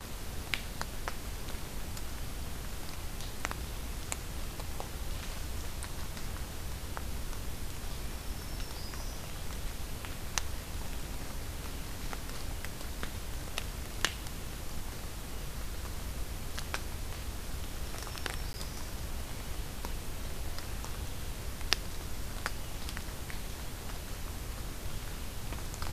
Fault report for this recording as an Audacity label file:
18.530000	18.540000	gap 10 ms

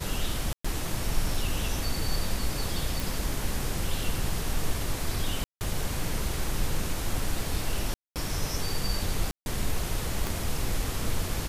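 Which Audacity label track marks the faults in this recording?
0.530000	0.650000	gap 0.115 s
3.000000	3.000000	pop
5.440000	5.610000	gap 0.169 s
7.940000	8.160000	gap 0.218 s
9.310000	9.460000	gap 0.151 s
10.270000	10.270000	pop

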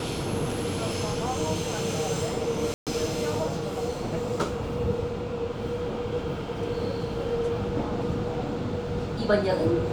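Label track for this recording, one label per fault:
2.740000	2.870000	gap 0.127 s

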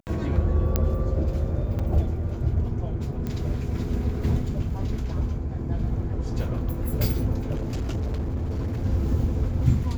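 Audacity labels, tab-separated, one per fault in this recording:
0.760000	0.760000	pop -8 dBFS
1.790000	1.800000	gap 5.4 ms
3.270000	3.270000	pop -19 dBFS
7.510000	8.860000	clipped -24 dBFS

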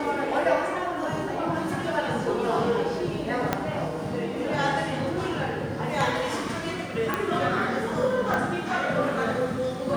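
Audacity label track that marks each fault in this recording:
3.530000	3.530000	pop -9 dBFS
7.140000	7.140000	pop -12 dBFS
8.340000	8.340000	pop

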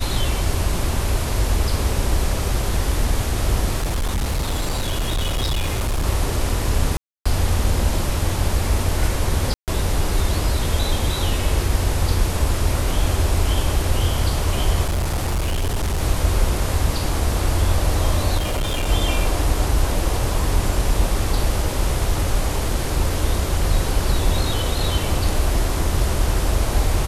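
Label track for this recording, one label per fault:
3.780000	6.050000	clipped -17.5 dBFS
6.970000	7.250000	gap 0.285 s
9.540000	9.680000	gap 0.138 s
14.850000	16.020000	clipped -17.5 dBFS
18.370000	18.890000	clipped -18 dBFS

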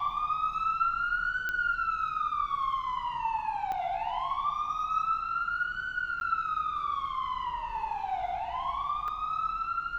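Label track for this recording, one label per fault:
1.490000	1.490000	pop -19 dBFS
3.720000	3.720000	pop -23 dBFS
6.200000	6.210000	gap 11 ms
9.080000	9.080000	gap 3.2 ms

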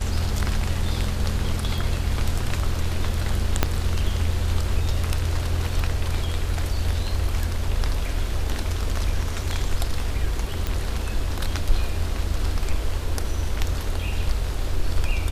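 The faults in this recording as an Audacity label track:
3.630000	3.630000	pop -3 dBFS
10.670000	10.670000	pop -12 dBFS

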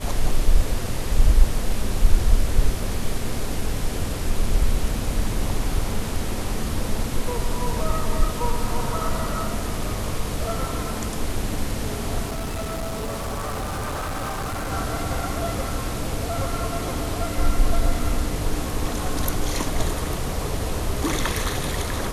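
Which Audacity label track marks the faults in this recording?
12.270000	14.730000	clipped -24.5 dBFS

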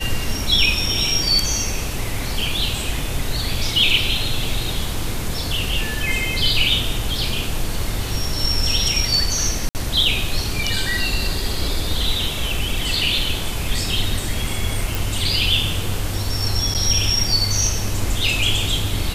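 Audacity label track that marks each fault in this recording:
9.690000	9.750000	gap 59 ms
14.950000	14.950000	pop
16.740000	16.750000	gap 8.3 ms

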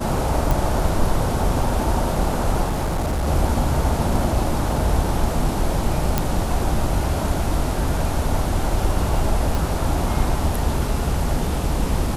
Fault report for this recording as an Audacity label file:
0.510000	0.510000	pop
2.640000	3.280000	clipped -18.5 dBFS
6.180000	6.180000	pop -4 dBFS
9.550000	9.550000	pop

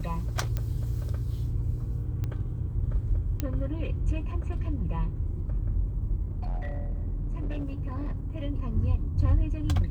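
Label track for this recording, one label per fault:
0.570000	0.570000	pop -17 dBFS
2.240000	2.240000	pop -21 dBFS
3.400000	3.400000	pop -15 dBFS
6.280000	8.260000	clipped -27 dBFS

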